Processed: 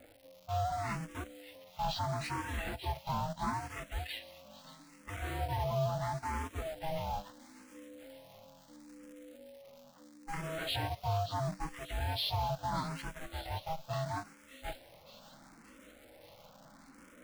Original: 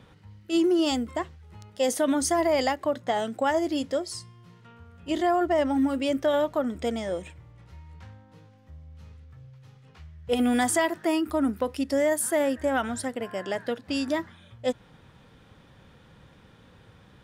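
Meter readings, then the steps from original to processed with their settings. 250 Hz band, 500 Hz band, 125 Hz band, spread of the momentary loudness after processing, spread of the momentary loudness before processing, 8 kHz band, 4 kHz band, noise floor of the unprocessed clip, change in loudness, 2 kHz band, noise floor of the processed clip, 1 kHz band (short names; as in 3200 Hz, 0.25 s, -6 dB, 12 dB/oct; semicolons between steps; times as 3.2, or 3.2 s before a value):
-19.0 dB, -15.5 dB, +6.5 dB, 22 LU, 10 LU, -17.0 dB, -5.5 dB, -55 dBFS, -11.0 dB, -9.5 dB, -59 dBFS, -6.0 dB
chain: inharmonic rescaling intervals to 75%; reverse; upward compressor, threshold -39 dBFS; reverse; soft clip -25.5 dBFS, distortion -11 dB; ring modulator 400 Hz; in parallel at -5 dB: requantised 6-bit, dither none; on the sum: crackle 250/s -41 dBFS; thin delay 0.58 s, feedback 66%, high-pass 2700 Hz, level -10.5 dB; endless phaser +0.75 Hz; gain -3.5 dB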